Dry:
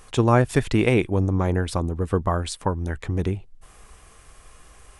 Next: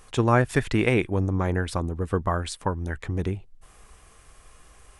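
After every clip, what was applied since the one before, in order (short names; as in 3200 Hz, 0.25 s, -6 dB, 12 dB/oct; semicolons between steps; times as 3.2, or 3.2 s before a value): dynamic EQ 1700 Hz, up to +5 dB, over -40 dBFS, Q 1.4; gain -3 dB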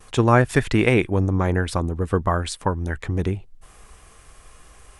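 gate with hold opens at -43 dBFS; gain +4 dB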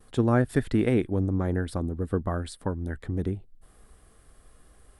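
fifteen-band EQ 250 Hz +5 dB, 1000 Hz -7 dB, 2500 Hz -10 dB, 6300 Hz -10 dB; gain -6.5 dB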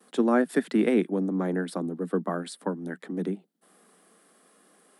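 steep high-pass 170 Hz 96 dB/oct; gain +1.5 dB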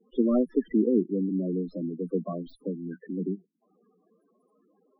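tracing distortion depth 0.37 ms; loudest bins only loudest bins 8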